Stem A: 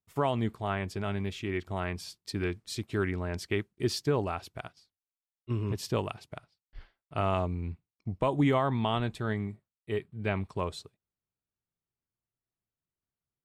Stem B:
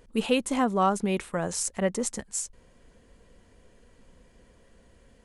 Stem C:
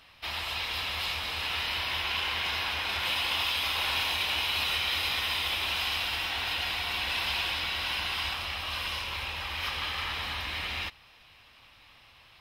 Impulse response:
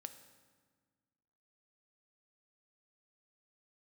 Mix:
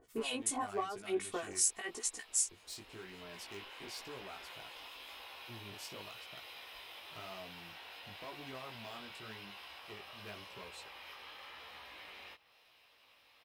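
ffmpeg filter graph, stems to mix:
-filter_complex "[0:a]acompressor=threshold=-39dB:ratio=2,volume=33dB,asoftclip=hard,volume=-33dB,volume=-5.5dB,asplit=3[link_01][link_02][link_03];[link_01]atrim=end=1.61,asetpts=PTS-STARTPTS,afade=type=out:start_time=1.606:duration=0.004:curve=hsin[link_04];[link_02]atrim=start=1.61:end=2.51,asetpts=PTS-STARTPTS,volume=0[link_05];[link_03]atrim=start=2.51,asetpts=PTS-STARTPTS,afade=type=in:duration=0.004:curve=hsin[link_06];[link_04][link_05][link_06]concat=n=3:v=0:a=1[link_07];[1:a]aecho=1:1:2.7:0.82,acompressor=threshold=-26dB:ratio=4,acrossover=split=1300[link_08][link_09];[link_08]aeval=exprs='val(0)*(1-1/2+1/2*cos(2*PI*5.2*n/s))':channel_layout=same[link_10];[link_09]aeval=exprs='val(0)*(1-1/2-1/2*cos(2*PI*5.2*n/s))':channel_layout=same[link_11];[link_10][link_11]amix=inputs=2:normalize=0,volume=0dB,asplit=2[link_12][link_13];[2:a]equalizer=frequency=490:width_type=o:width=1.3:gain=8.5,acompressor=threshold=-36dB:ratio=6,adynamicequalizer=threshold=0.00251:dfrequency=2800:dqfactor=0.7:tfrequency=2800:tqfactor=0.7:attack=5:release=100:ratio=0.375:range=2.5:mode=cutabove:tftype=highshelf,adelay=1450,volume=-9dB[link_14];[link_13]apad=whole_len=610961[link_15];[link_14][link_15]sidechaincompress=threshold=-45dB:ratio=6:attack=36:release=990[link_16];[link_07][link_12][link_16]amix=inputs=3:normalize=0,highshelf=frequency=8600:gain=-10,flanger=delay=15.5:depth=5.7:speed=0.94,aemphasis=mode=production:type=bsi"

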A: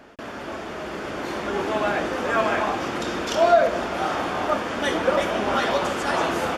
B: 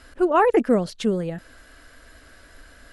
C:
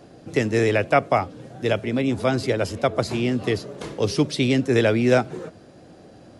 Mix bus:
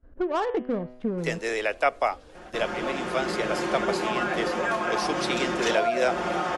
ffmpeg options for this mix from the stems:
ffmpeg -i stem1.wav -i stem2.wav -i stem3.wav -filter_complex "[0:a]equalizer=frequency=4300:width=1.5:gain=-2.5,aecho=1:1:5.6:0.96,adelay=2350,volume=-0.5dB[link_01];[1:a]adynamicsmooth=sensitivity=1:basefreq=520,agate=range=-16dB:threshold=-52dB:ratio=16:detection=peak,bandreject=frequency=125.1:width_type=h:width=4,bandreject=frequency=250.2:width_type=h:width=4,bandreject=frequency=375.3:width_type=h:width=4,bandreject=frequency=500.4:width_type=h:width=4,bandreject=frequency=625.5:width_type=h:width=4,bandreject=frequency=750.6:width_type=h:width=4,bandreject=frequency=875.7:width_type=h:width=4,bandreject=frequency=1000.8:width_type=h:width=4,bandreject=frequency=1125.9:width_type=h:width=4,bandreject=frequency=1251:width_type=h:width=4,bandreject=frequency=1376.1:width_type=h:width=4,bandreject=frequency=1501.2:width_type=h:width=4,bandreject=frequency=1626.3:width_type=h:width=4,bandreject=frequency=1751.4:width_type=h:width=4,bandreject=frequency=1876.5:width_type=h:width=4,bandreject=frequency=2001.6:width_type=h:width=4,bandreject=frequency=2126.7:width_type=h:width=4,bandreject=frequency=2251.8:width_type=h:width=4,bandreject=frequency=2376.9:width_type=h:width=4,bandreject=frequency=2502:width_type=h:width=4,bandreject=frequency=2627.1:width_type=h:width=4,bandreject=frequency=2752.2:width_type=h:width=4,bandreject=frequency=2877.3:width_type=h:width=4,bandreject=frequency=3002.4:width_type=h:width=4,bandreject=frequency=3127.5:width_type=h:width=4,bandreject=frequency=3252.6:width_type=h:width=4,bandreject=frequency=3377.7:width_type=h:width=4,bandreject=frequency=3502.8:width_type=h:width=4,bandreject=frequency=3627.9:width_type=h:width=4,bandreject=frequency=3753:width_type=h:width=4,volume=-1dB[link_02];[2:a]highpass=570,agate=range=-12dB:threshold=-48dB:ratio=16:detection=peak,adelay=900,volume=-3dB[link_03];[link_01][link_02]amix=inputs=2:normalize=0,lowpass=frequency=10000:width=0.5412,lowpass=frequency=10000:width=1.3066,acompressor=threshold=-24dB:ratio=5,volume=0dB[link_04];[link_03][link_04]amix=inputs=2:normalize=0" out.wav

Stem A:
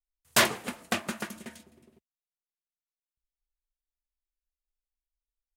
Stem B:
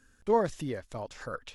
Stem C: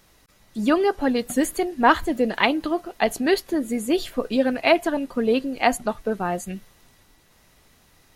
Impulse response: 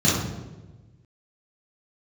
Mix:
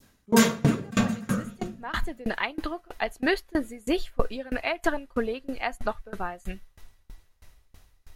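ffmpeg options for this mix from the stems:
-filter_complex "[0:a]bass=frequency=250:gain=8,treble=frequency=4000:gain=5,aecho=1:1:4.4:0.97,volume=-6.5dB,asplit=3[link_01][link_02][link_03];[link_02]volume=-12.5dB[link_04];[link_03]volume=-23dB[link_05];[1:a]volume=-7dB,asplit=3[link_06][link_07][link_08];[link_07]volume=-7.5dB[link_09];[2:a]asubboost=boost=9:cutoff=62,volume=1.5dB[link_10];[link_08]apad=whole_len=359648[link_11];[link_10][link_11]sidechaincompress=threshold=-52dB:ratio=8:attack=21:release=784[link_12];[3:a]atrim=start_sample=2205[link_13];[link_04][link_09]amix=inputs=2:normalize=0[link_14];[link_14][link_13]afir=irnorm=-1:irlink=0[link_15];[link_05]aecho=0:1:734:1[link_16];[link_01][link_06][link_12][link_15][link_16]amix=inputs=5:normalize=0,adynamicequalizer=threshold=0.0251:dfrequency=1600:dqfactor=0.76:tfrequency=1600:tqfactor=0.76:attack=5:release=100:ratio=0.375:range=3:mode=boostabove:tftype=bell,aeval=exprs='val(0)*pow(10,-26*if(lt(mod(3.1*n/s,1),2*abs(3.1)/1000),1-mod(3.1*n/s,1)/(2*abs(3.1)/1000),(mod(3.1*n/s,1)-2*abs(3.1)/1000)/(1-2*abs(3.1)/1000))/20)':channel_layout=same"

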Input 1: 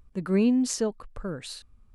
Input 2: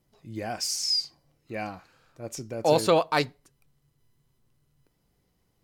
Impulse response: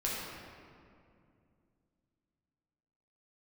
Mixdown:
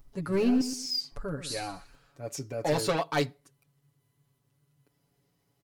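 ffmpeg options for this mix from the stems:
-filter_complex "[0:a]aeval=exprs='clip(val(0),-1,0.0708)':channel_layout=same,aexciter=amount=1.8:drive=5.6:freq=4700,volume=-3.5dB,asplit=3[link_01][link_02][link_03];[link_01]atrim=end=0.61,asetpts=PTS-STARTPTS,afade=type=out:start_time=0.606:duration=0.004:curve=hsin[link_04];[link_02]atrim=start=0.61:end=1.12,asetpts=PTS-STARTPTS,volume=0[link_05];[link_03]atrim=start=1.12,asetpts=PTS-STARTPTS,afade=type=in:duration=0.004:curve=hsin[link_06];[link_04][link_05][link_06]concat=n=3:v=0:a=1,asplit=3[link_07][link_08][link_09];[link_08]volume=-11.5dB[link_10];[1:a]highpass=72,asoftclip=type=tanh:threshold=-20dB,volume=-3dB[link_11];[link_09]apad=whole_len=248350[link_12];[link_11][link_12]sidechaincompress=threshold=-29dB:ratio=8:attack=5.4:release=1300[link_13];[link_10]aecho=0:1:122|244|366|488:1|0.28|0.0784|0.022[link_14];[link_07][link_13][link_14]amix=inputs=3:normalize=0,aecho=1:1:7.1:0.87"

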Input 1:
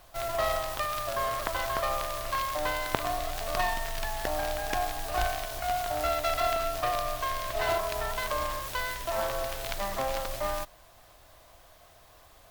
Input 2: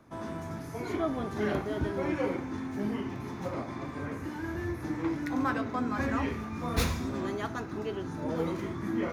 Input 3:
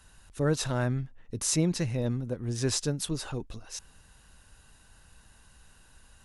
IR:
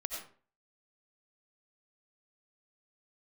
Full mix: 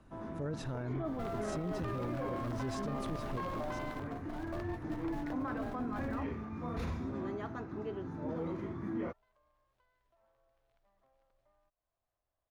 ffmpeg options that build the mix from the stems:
-filter_complex "[0:a]acompressor=threshold=-42dB:ratio=2.5,adelay=1050,volume=2.5dB[link_01];[1:a]volume=-4.5dB[link_02];[2:a]volume=-5.5dB,asplit=2[link_03][link_04];[link_04]apad=whole_len=597884[link_05];[link_01][link_05]sidechaingate=range=-34dB:threshold=-59dB:ratio=16:detection=peak[link_06];[link_06][link_02][link_03]amix=inputs=3:normalize=0,lowpass=frequency=1200:poles=1,alimiter=level_in=5.5dB:limit=-24dB:level=0:latency=1:release=10,volume=-5.5dB"

